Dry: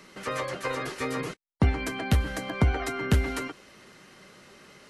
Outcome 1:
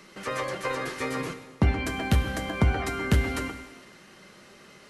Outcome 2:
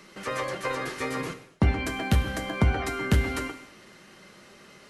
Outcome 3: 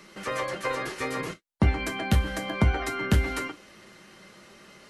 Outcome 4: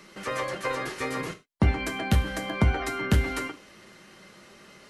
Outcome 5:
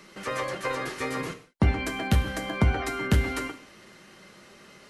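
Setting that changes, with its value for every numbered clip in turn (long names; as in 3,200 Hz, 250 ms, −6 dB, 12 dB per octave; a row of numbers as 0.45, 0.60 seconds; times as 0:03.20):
reverb whose tail is shaped and stops, gate: 490, 310, 80, 130, 210 milliseconds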